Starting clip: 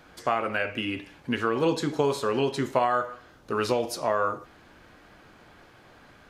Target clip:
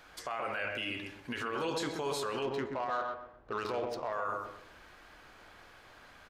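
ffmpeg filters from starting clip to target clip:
ffmpeg -i in.wav -filter_complex "[0:a]equalizer=frequency=180:width=0.42:gain=-12,acompressor=threshold=-26dB:ratio=6,asplit=2[link_01][link_02];[link_02]adelay=127,lowpass=frequency=1000:poles=1,volume=-4dB,asplit=2[link_03][link_04];[link_04]adelay=127,lowpass=frequency=1000:poles=1,volume=0.39,asplit=2[link_05][link_06];[link_06]adelay=127,lowpass=frequency=1000:poles=1,volume=0.39,asplit=2[link_07][link_08];[link_08]adelay=127,lowpass=frequency=1000:poles=1,volume=0.39,asplit=2[link_09][link_10];[link_10]adelay=127,lowpass=frequency=1000:poles=1,volume=0.39[link_11];[link_01][link_03][link_05][link_07][link_09][link_11]amix=inputs=6:normalize=0,asettb=1/sr,asplit=3[link_12][link_13][link_14];[link_12]atrim=end=2.424[link_15];[link_13]atrim=start=2.42:end=4.13,asetpts=PTS-STARTPTS,afade=type=in:duration=0.004:curve=qsin,afade=type=out:start_time=1.706:duration=0.004:curve=qsin,adynamicsmooth=sensitivity=3:basefreq=1300[link_16];[link_14]atrim=start=4.126[link_17];[link_15][link_16]acrossfade=duration=0.004:curve1=hsin:curve2=qsin[link_18];[link_18][link_17]acrossfade=duration=0.004:curve1=qsin:curve2=hsin,alimiter=level_in=2dB:limit=-24dB:level=0:latency=1:release=20,volume=-2dB" out.wav

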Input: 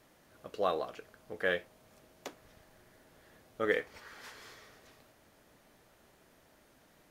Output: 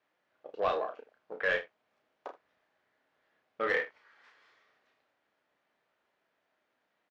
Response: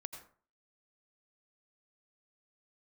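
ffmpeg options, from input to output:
-filter_complex "[0:a]asplit=2[link_01][link_02];[link_02]acrusher=bits=4:dc=4:mix=0:aa=0.000001,volume=-11dB[link_03];[link_01][link_03]amix=inputs=2:normalize=0,highpass=frequency=930:poles=1,afwtdn=0.00398,asoftclip=type=tanh:threshold=-29dB,lowpass=2900,aecho=1:1:32|78:0.531|0.15,volume=6.5dB"

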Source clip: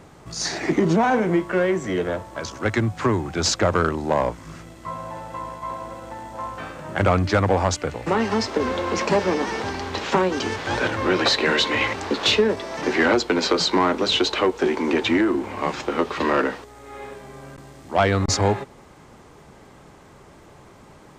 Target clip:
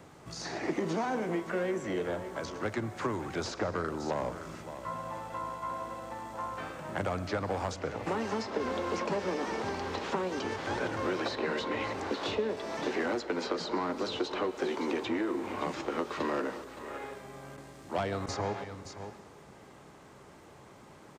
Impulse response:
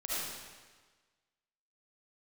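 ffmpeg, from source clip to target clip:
-filter_complex "[0:a]aecho=1:1:567:0.126,acrossover=split=430|1300|4600[link_01][link_02][link_03][link_04];[link_01]acompressor=threshold=-29dB:ratio=4[link_05];[link_02]acompressor=threshold=-29dB:ratio=4[link_06];[link_03]acompressor=threshold=-39dB:ratio=4[link_07];[link_04]acompressor=threshold=-47dB:ratio=4[link_08];[link_05][link_06][link_07][link_08]amix=inputs=4:normalize=0,asplit=2[link_09][link_10];[link_10]asetrate=58866,aresample=44100,atempo=0.749154,volume=-15dB[link_11];[link_09][link_11]amix=inputs=2:normalize=0,highpass=frequency=100:poles=1,asplit=2[link_12][link_13];[1:a]atrim=start_sample=2205,adelay=45[link_14];[link_13][link_14]afir=irnorm=-1:irlink=0,volume=-18.5dB[link_15];[link_12][link_15]amix=inputs=2:normalize=0,volume=-5.5dB"

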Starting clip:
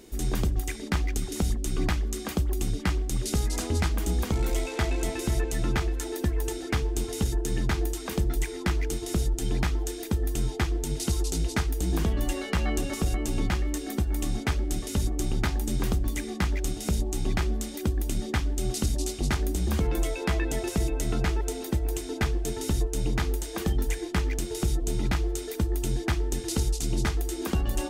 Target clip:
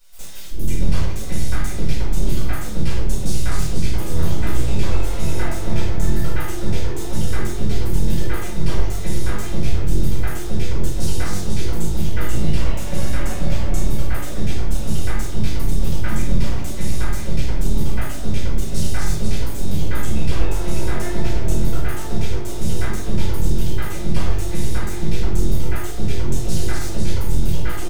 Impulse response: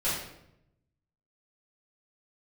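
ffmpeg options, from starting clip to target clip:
-filter_complex "[0:a]acrossover=split=430|2300[link_01][link_02][link_03];[link_01]adelay=380[link_04];[link_02]adelay=600[link_05];[link_04][link_05][link_03]amix=inputs=3:normalize=0,aeval=exprs='max(val(0),0)':channel_layout=same[link_06];[1:a]atrim=start_sample=2205[link_07];[link_06][link_07]afir=irnorm=-1:irlink=0,volume=-1dB"

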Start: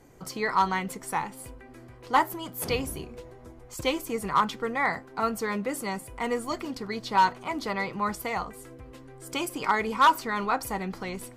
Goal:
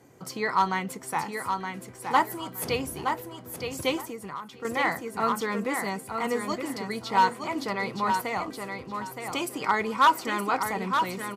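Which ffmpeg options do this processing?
ffmpeg -i in.wav -filter_complex "[0:a]asplit=2[link_01][link_02];[link_02]aecho=0:1:919|1838|2757:0.501|0.11|0.0243[link_03];[link_01][link_03]amix=inputs=2:normalize=0,asettb=1/sr,asplit=3[link_04][link_05][link_06];[link_04]atrim=end=4.004[link_07];[link_05]atrim=start=4:end=4.65,asetpts=PTS-STARTPTS,afade=type=in:duration=0.004:curve=qsin,afade=type=out:start_time=0.646:duration=0.004:curve=qsin,acompressor=threshold=-35dB:ratio=6[link_08];[link_06]atrim=start=4.646[link_09];[link_07][link_08]acrossfade=duration=0.004:curve1=hsin:curve2=qsin[link_10];[link_10][link_09]acrossfade=duration=0.004:curve1=qsin:curve2=hsin,highpass=frequency=85:width=0.5412,highpass=frequency=85:width=1.3066" out.wav

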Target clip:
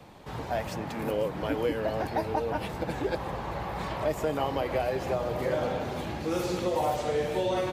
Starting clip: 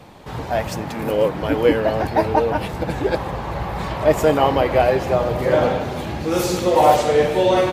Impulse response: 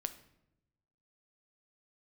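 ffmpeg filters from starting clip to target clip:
-filter_complex "[0:a]acrossover=split=180|4200[link_01][link_02][link_03];[link_01]acompressor=threshold=-31dB:ratio=4[link_04];[link_02]acompressor=threshold=-19dB:ratio=4[link_05];[link_03]acompressor=threshold=-40dB:ratio=4[link_06];[link_04][link_05][link_06]amix=inputs=3:normalize=0,volume=-7dB"

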